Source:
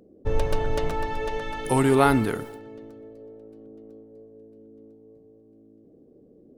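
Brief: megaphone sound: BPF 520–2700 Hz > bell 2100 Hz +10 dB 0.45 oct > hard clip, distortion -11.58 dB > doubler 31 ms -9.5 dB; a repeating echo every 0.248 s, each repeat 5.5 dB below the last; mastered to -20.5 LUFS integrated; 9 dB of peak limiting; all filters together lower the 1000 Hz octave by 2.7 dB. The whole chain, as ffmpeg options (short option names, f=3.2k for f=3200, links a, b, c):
-filter_complex "[0:a]equalizer=f=1k:t=o:g=-3.5,alimiter=limit=-16dB:level=0:latency=1,highpass=520,lowpass=2.7k,equalizer=f=2.1k:t=o:w=0.45:g=10,aecho=1:1:248|496|744|992|1240|1488|1736:0.531|0.281|0.149|0.079|0.0419|0.0222|0.0118,asoftclip=type=hard:threshold=-27.5dB,asplit=2[a][b];[b]adelay=31,volume=-9.5dB[c];[a][c]amix=inputs=2:normalize=0,volume=12.5dB"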